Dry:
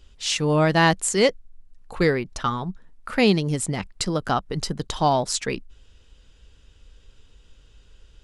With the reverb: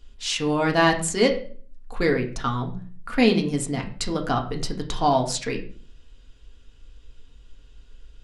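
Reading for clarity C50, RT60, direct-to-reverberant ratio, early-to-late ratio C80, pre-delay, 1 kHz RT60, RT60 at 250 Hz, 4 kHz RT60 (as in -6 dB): 11.5 dB, 0.45 s, 2.0 dB, 15.0 dB, 3 ms, 0.40 s, 0.60 s, 0.35 s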